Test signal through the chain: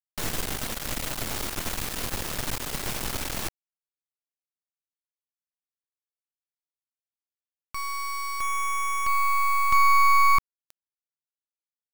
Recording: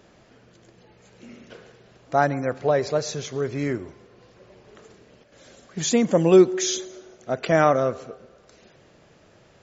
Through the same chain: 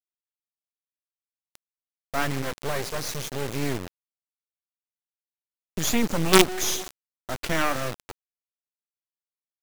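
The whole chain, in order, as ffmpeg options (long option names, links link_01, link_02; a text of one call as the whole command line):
ffmpeg -i in.wav -filter_complex "[0:a]agate=range=-10dB:threshold=-41dB:ratio=16:detection=peak,acrossover=split=340|970[link_01][link_02][link_03];[link_02]acompressor=threshold=-38dB:ratio=8[link_04];[link_01][link_04][link_03]amix=inputs=3:normalize=0,acrusher=bits=3:dc=4:mix=0:aa=0.000001,volume=3.5dB" out.wav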